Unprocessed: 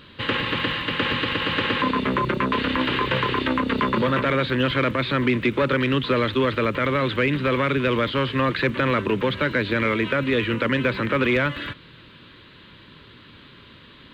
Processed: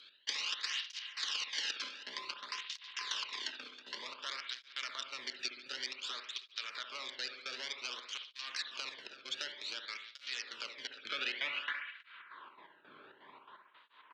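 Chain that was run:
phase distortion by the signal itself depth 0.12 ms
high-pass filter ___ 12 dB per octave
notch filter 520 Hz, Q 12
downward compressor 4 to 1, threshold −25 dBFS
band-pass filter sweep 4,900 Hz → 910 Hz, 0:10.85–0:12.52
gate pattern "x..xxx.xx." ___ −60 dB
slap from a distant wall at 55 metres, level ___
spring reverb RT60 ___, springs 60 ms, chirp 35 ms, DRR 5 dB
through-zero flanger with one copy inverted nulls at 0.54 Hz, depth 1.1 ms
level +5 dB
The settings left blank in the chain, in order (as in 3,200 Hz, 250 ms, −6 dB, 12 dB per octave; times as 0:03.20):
77 Hz, 167 BPM, −13 dB, 1.1 s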